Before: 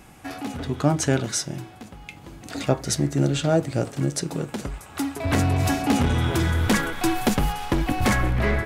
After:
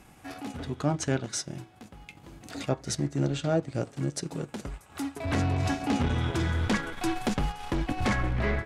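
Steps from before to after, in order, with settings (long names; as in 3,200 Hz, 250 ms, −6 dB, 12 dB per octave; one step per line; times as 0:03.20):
transient designer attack −3 dB, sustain −7 dB
treble cut that deepens with the level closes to 1,800 Hz, closed at −10 dBFS
level −5 dB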